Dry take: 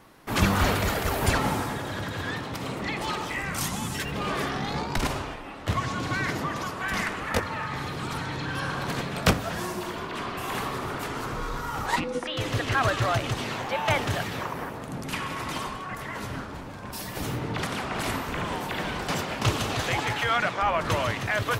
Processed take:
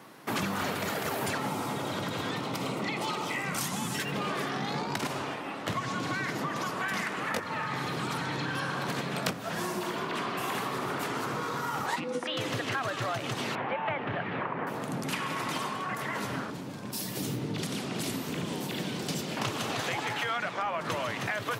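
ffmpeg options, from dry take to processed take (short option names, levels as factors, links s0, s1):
-filter_complex "[0:a]asettb=1/sr,asplit=3[s0][s1][s2];[s0]atrim=end=1.484[s3];[s1]atrim=start=1.48:end=3.57,asetpts=PTS-STARTPTS,afade=t=in:d=0.004:c=qsin,afade=t=out:st=2.086:d=0.004:c=qsin,bandreject=f=1700:w=5.3[s4];[s2]atrim=start=3.566[s5];[s3][s4]acrossfade=d=0.004:c1=hsin:c2=qsin[s6];[s6][s5]acrossfade=d=0.004:c1=qsin:c2=hsin,asettb=1/sr,asplit=3[s7][s8][s9];[s7]atrim=end=13.554[s10];[s8]atrim=start=13.55:end=14.67,asetpts=PTS-STARTPTS,afade=t=in:d=0.004:c=qsin,afade=t=out:st=1.116:d=0.004:c=qsin,lowpass=f=2600:w=0.5412,lowpass=f=2600:w=1.3066[s11];[s9]atrim=start=14.666[s12];[s10][s11]acrossfade=d=0.004:c1=hsin:c2=qsin[s13];[s13][s12]acrossfade=d=0.004:c1=qsin:c2=hsin,asettb=1/sr,asplit=3[s14][s15][s16];[s14]atrim=end=16.504[s17];[s15]atrim=start=16.5:end=19.37,asetpts=PTS-STARTPTS,afade=t=in:d=0.004:c=qsin,afade=t=out:st=2.866:d=0.004:c=qsin,acrossover=split=460|3000[s18][s19][s20];[s19]acompressor=threshold=0.00141:ratio=2:attack=3.2:release=140:knee=2.83:detection=peak[s21];[s18][s21][s20]amix=inputs=3:normalize=0[s22];[s16]atrim=start=19.366[s23];[s17][s22]acrossfade=d=0.004:c1=hsin:c2=qsin[s24];[s24][s23]acrossfade=d=0.004:c1=qsin:c2=hsin,highpass=f=130:w=0.5412,highpass=f=130:w=1.3066,acompressor=threshold=0.0251:ratio=6,volume=1.41"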